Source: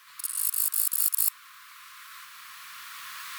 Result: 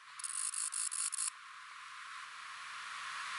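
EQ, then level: brick-wall FIR low-pass 11 kHz; peaking EQ 150 Hz -8 dB 0.42 oct; treble shelf 3.4 kHz -9.5 dB; +1.0 dB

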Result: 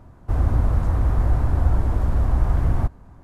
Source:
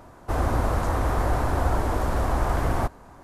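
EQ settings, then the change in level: tone controls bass +14 dB, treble -4 dB; -7.5 dB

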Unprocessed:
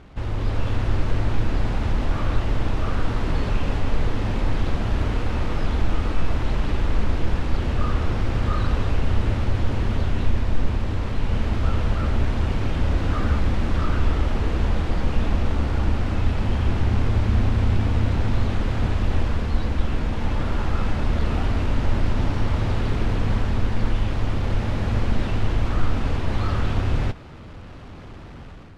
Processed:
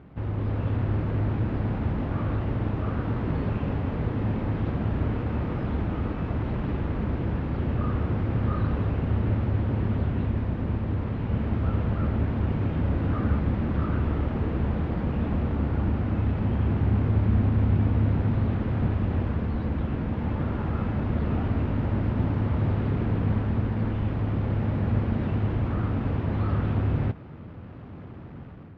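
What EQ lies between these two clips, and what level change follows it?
high-pass 110 Hz 12 dB/octave; low-pass 2.3 kHz 12 dB/octave; bass shelf 330 Hz +11 dB; -6.0 dB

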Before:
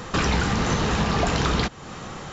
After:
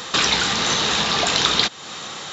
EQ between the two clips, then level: high-pass 390 Hz 6 dB/octave; treble shelf 2.2 kHz +9.5 dB; peaking EQ 3.7 kHz +8 dB 0.4 oct; +1.0 dB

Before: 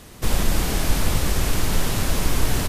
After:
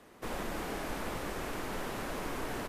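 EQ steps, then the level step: three-band isolator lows -16 dB, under 230 Hz, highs -12 dB, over 2.3 kHz; -8.0 dB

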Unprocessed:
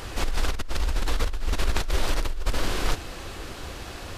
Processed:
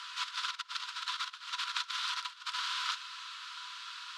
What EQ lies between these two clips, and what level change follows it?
rippled Chebyshev high-pass 960 Hz, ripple 9 dB; low-pass 6.3 kHz 12 dB/octave; +2.0 dB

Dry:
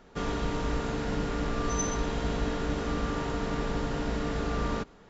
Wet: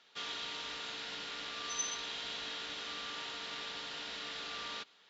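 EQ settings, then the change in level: band-pass filter 3.6 kHz, Q 2.2; +6.0 dB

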